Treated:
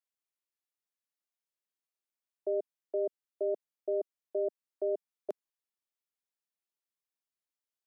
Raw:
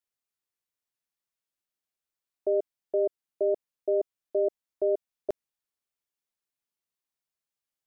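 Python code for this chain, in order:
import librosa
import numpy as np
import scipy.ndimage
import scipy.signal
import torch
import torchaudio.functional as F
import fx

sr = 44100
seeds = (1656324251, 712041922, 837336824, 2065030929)

y = scipy.signal.sosfilt(scipy.signal.butter(4, 220.0, 'highpass', fs=sr, output='sos'), x)
y = F.gain(torch.from_numpy(y), -6.0).numpy()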